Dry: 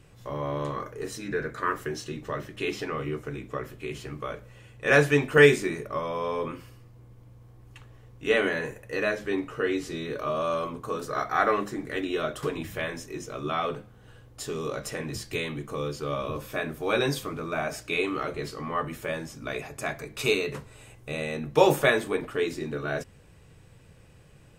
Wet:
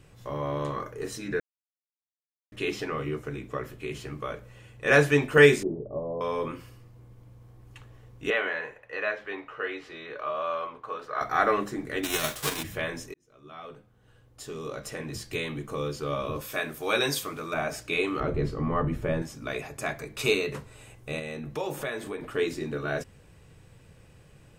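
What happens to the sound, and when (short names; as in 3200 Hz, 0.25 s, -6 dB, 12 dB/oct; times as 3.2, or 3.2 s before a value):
1.4–2.52 mute
5.63–6.21 steep low-pass 770 Hz
8.3–11.21 three-band isolator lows -17 dB, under 530 Hz, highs -22 dB, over 3600 Hz
12.03–12.62 spectral whitening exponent 0.3
13.14–15.67 fade in
16.41–17.54 tilt +2 dB/oct
18.2–19.22 tilt -3.5 dB/oct
21.19–22.27 compressor 2.5:1, threshold -34 dBFS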